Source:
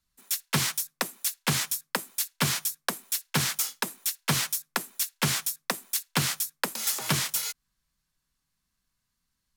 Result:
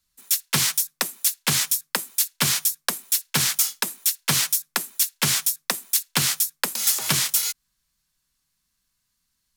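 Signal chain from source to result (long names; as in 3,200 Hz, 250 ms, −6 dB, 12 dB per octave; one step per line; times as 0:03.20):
high-shelf EQ 2,300 Hz +8 dB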